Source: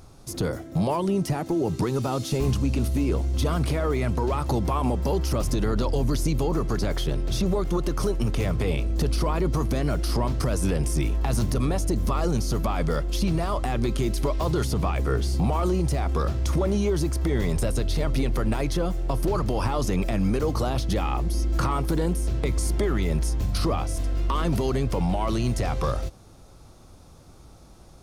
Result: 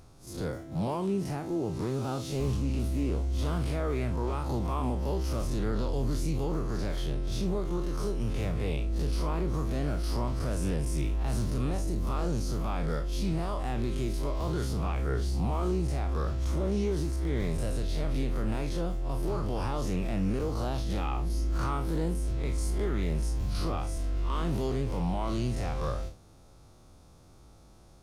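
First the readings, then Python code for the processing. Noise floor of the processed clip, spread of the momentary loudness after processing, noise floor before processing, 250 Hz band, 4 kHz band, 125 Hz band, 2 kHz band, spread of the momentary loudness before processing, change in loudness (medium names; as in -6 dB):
-54 dBFS, 3 LU, -49 dBFS, -6.0 dB, -7.5 dB, -5.5 dB, -7.0 dB, 2 LU, -6.0 dB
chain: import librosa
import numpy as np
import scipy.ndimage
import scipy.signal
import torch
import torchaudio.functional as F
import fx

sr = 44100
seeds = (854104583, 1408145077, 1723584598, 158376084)

y = fx.spec_blur(x, sr, span_ms=86.0)
y = fx.doppler_dist(y, sr, depth_ms=0.19)
y = y * librosa.db_to_amplitude(-4.5)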